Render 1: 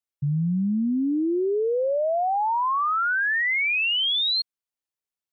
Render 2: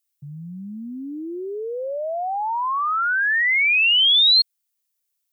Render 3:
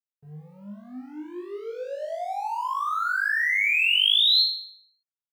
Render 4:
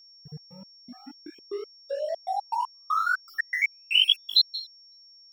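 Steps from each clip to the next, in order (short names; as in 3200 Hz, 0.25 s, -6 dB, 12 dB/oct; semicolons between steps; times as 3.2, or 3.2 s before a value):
tilt +4.5 dB/oct
crossover distortion -41 dBFS; on a send: flutter echo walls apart 3.4 m, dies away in 0.63 s; on the sum: gain -8.5 dB
random spectral dropouts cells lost 38%; step gate "x.x.x..x" 119 bpm -60 dB; whine 5500 Hz -53 dBFS; gain +2.5 dB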